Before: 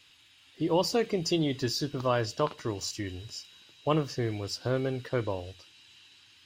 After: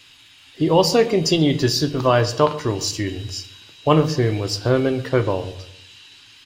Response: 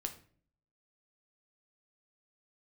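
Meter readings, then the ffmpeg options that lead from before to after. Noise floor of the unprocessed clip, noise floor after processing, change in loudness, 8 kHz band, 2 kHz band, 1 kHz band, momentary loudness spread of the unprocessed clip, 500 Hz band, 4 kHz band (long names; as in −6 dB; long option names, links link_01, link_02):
−59 dBFS, −49 dBFS, +11.0 dB, +10.5 dB, +10.5 dB, +11.0 dB, 11 LU, +11.0 dB, +10.5 dB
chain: -filter_complex "[0:a]asplit=2[link_01][link_02];[link_02]adelay=133,lowpass=frequency=2000:poles=1,volume=-17.5dB,asplit=2[link_03][link_04];[link_04]adelay=133,lowpass=frequency=2000:poles=1,volume=0.41,asplit=2[link_05][link_06];[link_06]adelay=133,lowpass=frequency=2000:poles=1,volume=0.41[link_07];[link_01][link_03][link_05][link_07]amix=inputs=4:normalize=0,asplit=2[link_08][link_09];[1:a]atrim=start_sample=2205[link_10];[link_09][link_10]afir=irnorm=-1:irlink=0,volume=4.5dB[link_11];[link_08][link_11]amix=inputs=2:normalize=0,volume=3dB"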